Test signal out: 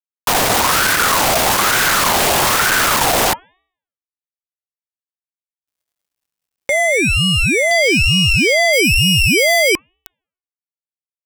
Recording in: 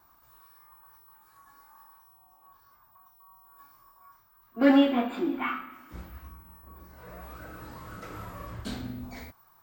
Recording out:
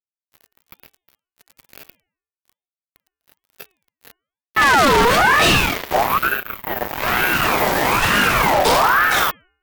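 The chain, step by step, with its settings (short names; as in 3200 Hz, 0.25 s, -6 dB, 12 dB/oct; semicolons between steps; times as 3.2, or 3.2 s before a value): fuzz box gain 46 dB, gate -48 dBFS; de-hum 366.9 Hz, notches 6; ring modulator with a swept carrier 1100 Hz, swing 40%, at 1.1 Hz; gain +4 dB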